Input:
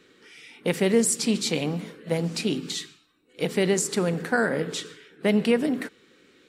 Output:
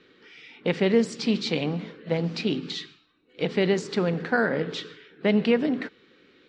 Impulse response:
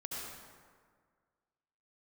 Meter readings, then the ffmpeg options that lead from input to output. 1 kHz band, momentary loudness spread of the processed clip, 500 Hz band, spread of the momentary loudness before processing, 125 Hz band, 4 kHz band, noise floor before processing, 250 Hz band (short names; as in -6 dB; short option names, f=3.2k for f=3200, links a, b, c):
0.0 dB, 12 LU, 0.0 dB, 11 LU, 0.0 dB, -1.0 dB, -60 dBFS, 0.0 dB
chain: -af "lowpass=f=4.7k:w=0.5412,lowpass=f=4.7k:w=1.3066"